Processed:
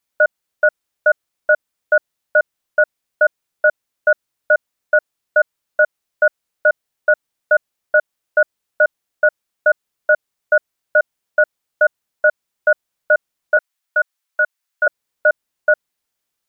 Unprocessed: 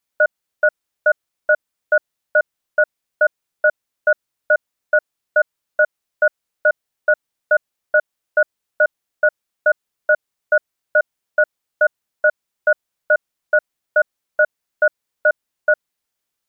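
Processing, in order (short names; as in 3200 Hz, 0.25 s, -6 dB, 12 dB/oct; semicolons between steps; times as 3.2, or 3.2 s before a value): 13.57–14.87 HPF 930 Hz 12 dB/oct; gain +1.5 dB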